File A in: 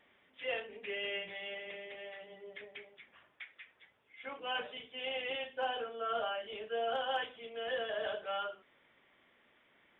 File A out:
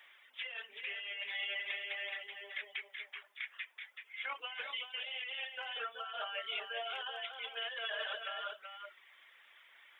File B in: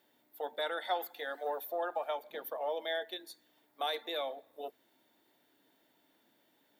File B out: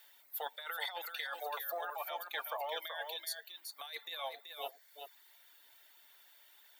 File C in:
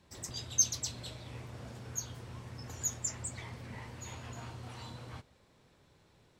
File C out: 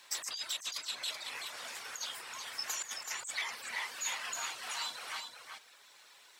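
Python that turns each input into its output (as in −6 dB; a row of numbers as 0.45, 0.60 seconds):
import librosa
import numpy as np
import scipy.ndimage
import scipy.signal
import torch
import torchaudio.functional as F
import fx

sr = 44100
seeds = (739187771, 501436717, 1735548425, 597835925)

p1 = scipy.signal.sosfilt(scipy.signal.butter(2, 1300.0, 'highpass', fs=sr, output='sos'), x)
p2 = fx.dereverb_blind(p1, sr, rt60_s=0.79)
p3 = fx.high_shelf(p2, sr, hz=7700.0, db=4.5)
p4 = fx.over_compress(p3, sr, threshold_db=-48.0, ratio=-1.0)
p5 = p4 + fx.echo_single(p4, sr, ms=380, db=-6.5, dry=0)
y = p5 * 10.0 ** (6.5 / 20.0)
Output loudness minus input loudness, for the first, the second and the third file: −1.5, −3.0, −0.5 LU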